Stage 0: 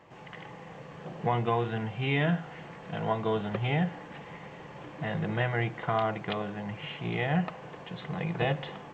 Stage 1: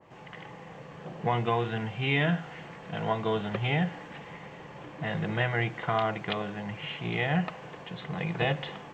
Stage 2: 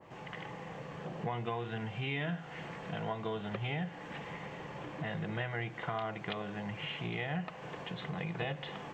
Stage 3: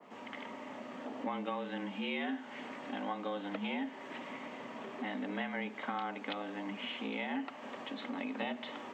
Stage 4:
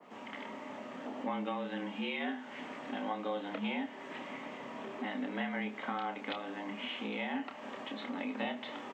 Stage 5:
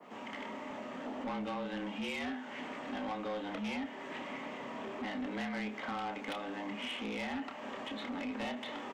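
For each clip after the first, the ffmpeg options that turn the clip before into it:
ffmpeg -i in.wav -af "adynamicequalizer=threshold=0.00708:dfrequency=1500:dqfactor=0.7:tfrequency=1500:tqfactor=0.7:attack=5:release=100:ratio=0.375:range=2:mode=boostabove:tftype=highshelf" out.wav
ffmpeg -i in.wav -af "acompressor=threshold=-39dB:ratio=2.5,volume=1dB" out.wav
ffmpeg -i in.wav -af "afreqshift=93,volume=-1dB" out.wav
ffmpeg -i in.wav -filter_complex "[0:a]asplit=2[link_01][link_02];[link_02]adelay=28,volume=-7dB[link_03];[link_01][link_03]amix=inputs=2:normalize=0" out.wav
ffmpeg -i in.wav -af "asoftclip=type=tanh:threshold=-36dB,volume=2.5dB" out.wav

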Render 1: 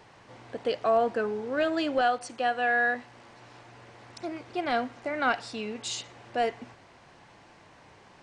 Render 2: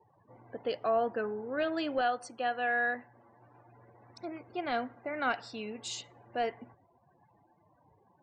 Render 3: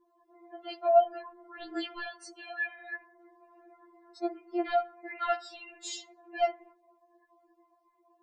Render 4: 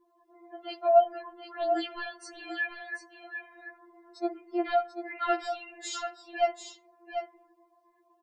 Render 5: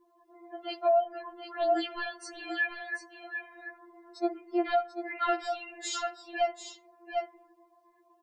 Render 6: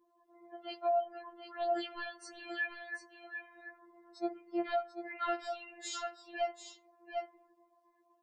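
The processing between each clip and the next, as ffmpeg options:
ffmpeg -i in.wav -af "afftdn=noise_reduction=33:noise_floor=-48,volume=-5dB" out.wav
ffmpeg -i in.wav -af "afftfilt=real='re*4*eq(mod(b,16),0)':imag='im*4*eq(mod(b,16),0)':win_size=2048:overlap=0.75,volume=2.5dB" out.wav
ffmpeg -i in.wav -af "aecho=1:1:740:0.398,volume=1.5dB" out.wav
ffmpeg -i in.wav -af "alimiter=limit=-20dB:level=0:latency=1:release=325,volume=2dB" out.wav
ffmpeg -i in.wav -af "afftfilt=real='hypot(re,im)*cos(PI*b)':imag='0':win_size=1024:overlap=0.75,volume=-6dB" out.wav

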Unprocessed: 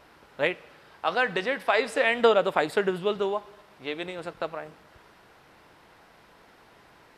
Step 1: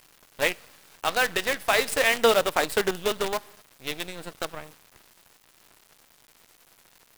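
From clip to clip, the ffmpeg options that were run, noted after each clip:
ffmpeg -i in.wav -af "aemphasis=mode=production:type=75fm,acrusher=bits=5:dc=4:mix=0:aa=0.000001" out.wav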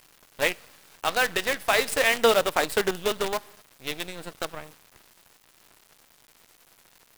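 ffmpeg -i in.wav -af anull out.wav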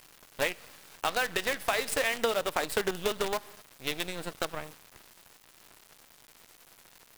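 ffmpeg -i in.wav -af "acompressor=threshold=-26dB:ratio=6,volume=1dB" out.wav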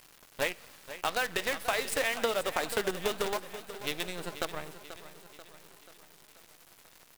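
ffmpeg -i in.wav -af "aecho=1:1:486|972|1458|1944|2430|2916:0.224|0.121|0.0653|0.0353|0.019|0.0103,volume=-1.5dB" out.wav

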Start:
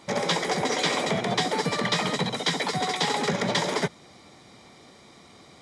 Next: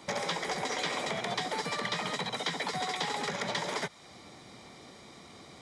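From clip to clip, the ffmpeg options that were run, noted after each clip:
ffmpeg -i in.wav -filter_complex "[0:a]acrossover=split=100|620|3000[link_01][link_02][link_03][link_04];[link_01]acompressor=threshold=-57dB:ratio=4[link_05];[link_02]acompressor=threshold=-42dB:ratio=4[link_06];[link_03]acompressor=threshold=-34dB:ratio=4[link_07];[link_04]acompressor=threshold=-40dB:ratio=4[link_08];[link_05][link_06][link_07][link_08]amix=inputs=4:normalize=0" out.wav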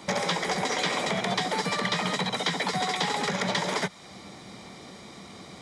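ffmpeg -i in.wav -af "equalizer=frequency=190:width_type=o:width=0.26:gain=7,volume=5.5dB" out.wav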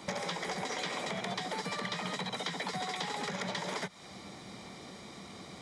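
ffmpeg -i in.wav -af "acompressor=threshold=-31dB:ratio=4,volume=-3dB" out.wav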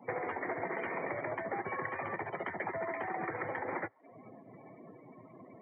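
ffmpeg -i in.wav -af "highpass=frequency=260:width_type=q:width=0.5412,highpass=frequency=260:width_type=q:width=1.307,lowpass=frequency=2400:width_type=q:width=0.5176,lowpass=frequency=2400:width_type=q:width=0.7071,lowpass=frequency=2400:width_type=q:width=1.932,afreqshift=-78,afftdn=noise_reduction=27:noise_floor=-46,volume=1.5dB" out.wav

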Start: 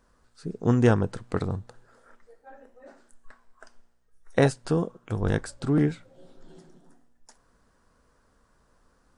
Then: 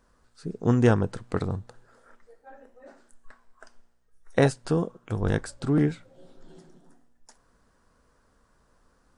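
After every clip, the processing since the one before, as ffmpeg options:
ffmpeg -i in.wav -af anull out.wav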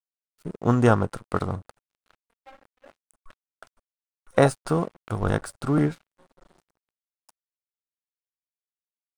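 ffmpeg -i in.wav -af "superequalizer=8b=1.78:9b=1.78:10b=2.51:16b=2.24,aeval=exprs='sgn(val(0))*max(abs(val(0))-0.00631,0)':channel_layout=same,volume=1dB" out.wav

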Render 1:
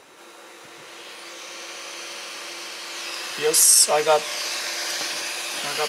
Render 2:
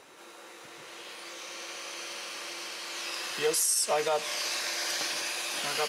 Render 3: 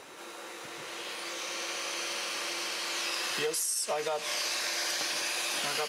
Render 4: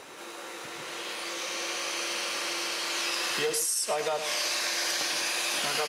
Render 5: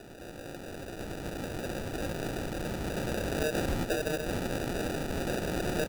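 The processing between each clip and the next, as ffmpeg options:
ffmpeg -i in.wav -af "alimiter=limit=-13dB:level=0:latency=1:release=124,volume=-4.5dB" out.wav
ffmpeg -i in.wav -af "acompressor=threshold=-34dB:ratio=6,volume=5dB" out.wav
ffmpeg -i in.wav -filter_complex "[0:a]asplit=2[link_01][link_02];[link_02]adelay=105,volume=-10dB,highshelf=frequency=4000:gain=-2.36[link_03];[link_01][link_03]amix=inputs=2:normalize=0,volume=2.5dB" out.wav
ffmpeg -i in.wav -af "acrusher=samples=41:mix=1:aa=0.000001,volume=-2dB" out.wav

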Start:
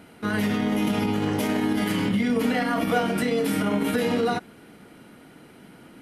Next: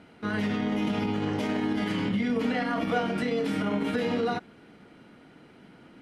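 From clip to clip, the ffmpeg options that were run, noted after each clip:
ffmpeg -i in.wav -af "lowpass=5400,volume=-4dB" out.wav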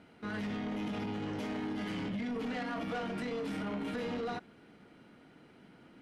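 ffmpeg -i in.wav -af "asoftclip=type=tanh:threshold=-27dB,volume=-5.5dB" out.wav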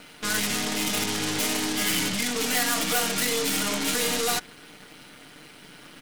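ffmpeg -i in.wav -af "aeval=exprs='0.0237*(cos(1*acos(clip(val(0)/0.0237,-1,1)))-cos(1*PI/2))+0.00422*(cos(8*acos(clip(val(0)/0.0237,-1,1)))-cos(8*PI/2))':channel_layout=same,crystalizer=i=10:c=0,aecho=1:1:6.7:0.33,volume=4.5dB" out.wav

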